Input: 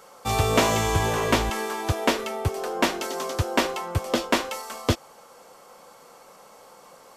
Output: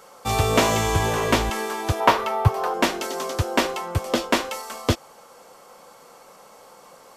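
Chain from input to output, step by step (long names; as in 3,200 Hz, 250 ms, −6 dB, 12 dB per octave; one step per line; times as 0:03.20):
0:02.00–0:02.74: octave-band graphic EQ 125/250/1,000/8,000 Hz +11/−8/+11/−7 dB
level +1.5 dB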